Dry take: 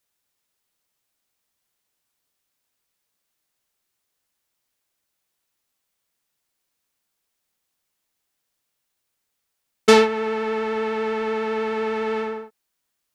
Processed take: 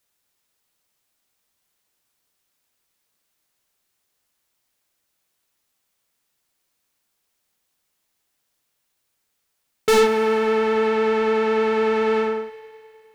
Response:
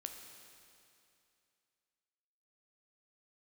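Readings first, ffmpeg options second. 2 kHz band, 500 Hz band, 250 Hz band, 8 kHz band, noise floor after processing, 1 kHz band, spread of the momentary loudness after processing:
+1.0 dB, +3.0 dB, +1.0 dB, 0.0 dB, −74 dBFS, +1.5 dB, 9 LU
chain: -filter_complex "[0:a]asoftclip=type=hard:threshold=-17.5dB,asplit=2[link_01][link_02];[1:a]atrim=start_sample=2205[link_03];[link_02][link_03]afir=irnorm=-1:irlink=0,volume=3.5dB[link_04];[link_01][link_04]amix=inputs=2:normalize=0,volume=-2dB"

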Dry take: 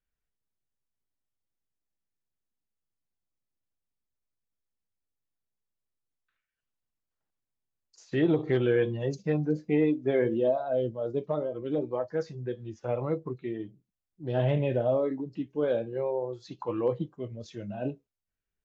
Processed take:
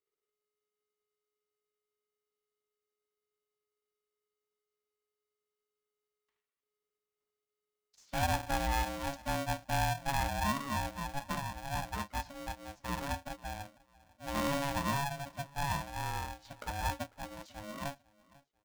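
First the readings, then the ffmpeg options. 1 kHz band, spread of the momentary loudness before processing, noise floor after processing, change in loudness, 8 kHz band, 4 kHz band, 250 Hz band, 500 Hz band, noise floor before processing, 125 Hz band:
+6.5 dB, 12 LU, below −85 dBFS, −6.5 dB, can't be measured, +7.0 dB, −11.0 dB, −15.0 dB, below −85 dBFS, −6.0 dB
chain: -af "aecho=1:1:496|992:0.0708|0.0219,aeval=exprs='val(0)*sgn(sin(2*PI*420*n/s))':channel_layout=same,volume=-7dB"

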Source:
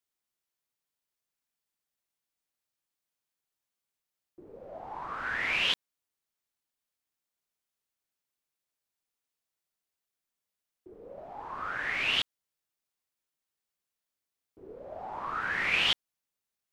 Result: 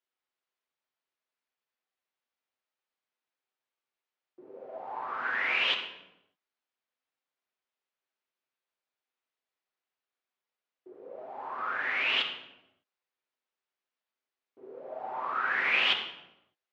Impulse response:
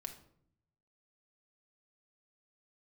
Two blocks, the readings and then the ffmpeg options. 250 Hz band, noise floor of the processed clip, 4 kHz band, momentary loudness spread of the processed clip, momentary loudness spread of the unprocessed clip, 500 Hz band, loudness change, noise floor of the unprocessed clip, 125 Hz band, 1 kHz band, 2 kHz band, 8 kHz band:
−2.0 dB, below −85 dBFS, −0.5 dB, 19 LU, 20 LU, +2.0 dB, +0.5 dB, below −85 dBFS, below −10 dB, +3.0 dB, +1.5 dB, below −10 dB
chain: -filter_complex "[0:a]highpass=330,lowpass=3300[link_01];[1:a]atrim=start_sample=2205,afade=type=out:start_time=0.4:duration=0.01,atrim=end_sample=18081,asetrate=25137,aresample=44100[link_02];[link_01][link_02]afir=irnorm=-1:irlink=0,volume=2.5dB"

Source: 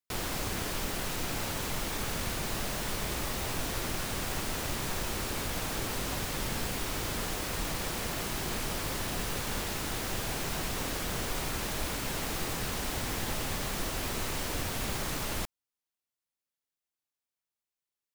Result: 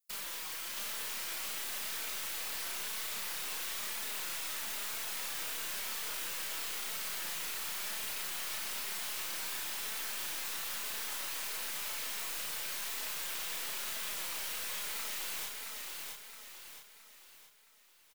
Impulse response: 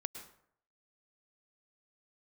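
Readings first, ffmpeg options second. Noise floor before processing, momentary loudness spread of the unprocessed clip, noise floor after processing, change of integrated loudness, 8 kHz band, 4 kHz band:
below −85 dBFS, 0 LU, −58 dBFS, −3.0 dB, −2.0 dB, −2.5 dB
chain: -filter_complex "[0:a]afftfilt=real='re*lt(hypot(re,im),0.0562)':imag='im*lt(hypot(re,im),0.0562)':win_size=1024:overlap=0.75,acrossover=split=700|3700[link_01][link_02][link_03];[link_01]acompressor=threshold=-48dB:ratio=4[link_04];[link_02]acompressor=threshold=-41dB:ratio=4[link_05];[link_03]acompressor=threshold=-53dB:ratio=4[link_06];[link_04][link_05][link_06]amix=inputs=3:normalize=0,bandreject=frequency=730:width=12,afftfilt=real='hypot(re,im)*cos(2*PI*random(0))':imag='hypot(re,im)*sin(2*PI*random(1))':win_size=512:overlap=0.75,crystalizer=i=8:c=0,bandreject=frequency=60:width_type=h:width=6,bandreject=frequency=120:width_type=h:width=6,bandreject=frequency=180:width_type=h:width=6,bandreject=frequency=240:width_type=h:width=6,bandreject=frequency=300:width_type=h:width=6,bandreject=frequency=360:width_type=h:width=6,flanger=delay=4.5:depth=1.9:regen=-4:speed=1:shape=sinusoidal,aeval=exprs='0.0596*(cos(1*acos(clip(val(0)/0.0596,-1,1)))-cos(1*PI/2))+0.00211*(cos(8*acos(clip(val(0)/0.0596,-1,1)))-cos(8*PI/2))':channel_layout=same,asplit=2[link_07][link_08];[link_08]adelay=32,volume=-2.5dB[link_09];[link_07][link_09]amix=inputs=2:normalize=0,asplit=2[link_10][link_11];[link_11]aecho=0:1:669|1338|2007|2676|3345|4014:0.708|0.311|0.137|0.0603|0.0265|0.0117[link_12];[link_10][link_12]amix=inputs=2:normalize=0,volume=-4dB"

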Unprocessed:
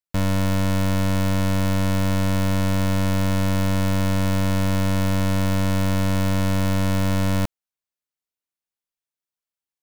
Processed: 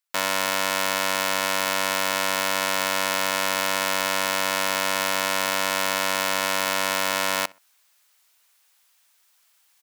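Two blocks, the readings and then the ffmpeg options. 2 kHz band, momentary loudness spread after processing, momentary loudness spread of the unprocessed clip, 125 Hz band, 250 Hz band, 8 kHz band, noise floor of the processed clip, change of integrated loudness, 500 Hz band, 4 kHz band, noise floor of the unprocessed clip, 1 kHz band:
+8.0 dB, 0 LU, 0 LU, −25.0 dB, −14.5 dB, +8.5 dB, −64 dBFS, −0.5 dB, 0.0 dB, +8.5 dB, below −85 dBFS, +6.0 dB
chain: -filter_complex "[0:a]highpass=890,areverse,acompressor=mode=upward:threshold=-54dB:ratio=2.5,areverse,asplit=2[link_01][link_02];[link_02]adelay=63,lowpass=frequency=2800:poles=1,volume=-22.5dB,asplit=2[link_03][link_04];[link_04]adelay=63,lowpass=frequency=2800:poles=1,volume=0.3[link_05];[link_01][link_03][link_05]amix=inputs=3:normalize=0,volume=8.5dB"

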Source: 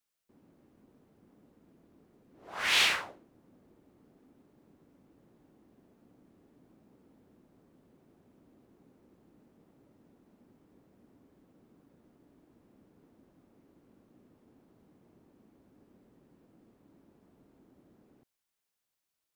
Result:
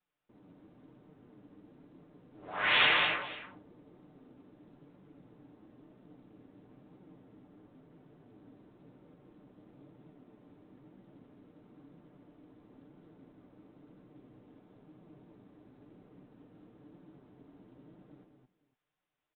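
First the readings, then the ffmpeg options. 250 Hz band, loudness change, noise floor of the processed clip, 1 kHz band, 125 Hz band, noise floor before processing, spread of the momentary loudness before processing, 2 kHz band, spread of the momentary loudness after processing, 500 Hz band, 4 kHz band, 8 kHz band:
+5.5 dB, 0.0 dB, −79 dBFS, +5.0 dB, +7.0 dB, below −85 dBFS, 14 LU, +2.5 dB, 20 LU, +5.5 dB, −0.5 dB, below −35 dB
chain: -filter_complex "[0:a]acontrast=80,aemphasis=mode=reproduction:type=75kf,aecho=1:1:6.7:0.38,aresample=8000,acrusher=bits=6:mode=log:mix=0:aa=0.000001,aresample=44100,flanger=delay=5.2:depth=5.8:regen=37:speed=1:shape=triangular,asplit=2[link_01][link_02];[link_02]aecho=0:1:81|203|219|499:0.422|0.422|0.447|0.112[link_03];[link_01][link_03]amix=inputs=2:normalize=0"

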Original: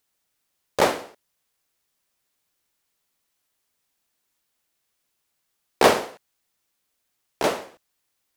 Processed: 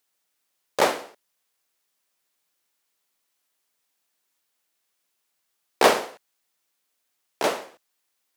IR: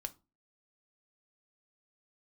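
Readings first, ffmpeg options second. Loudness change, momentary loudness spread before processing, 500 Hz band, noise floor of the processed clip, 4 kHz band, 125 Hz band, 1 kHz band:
−1.0 dB, 16 LU, −1.5 dB, −76 dBFS, 0.0 dB, −7.5 dB, −0.5 dB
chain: -af "highpass=frequency=310:poles=1"

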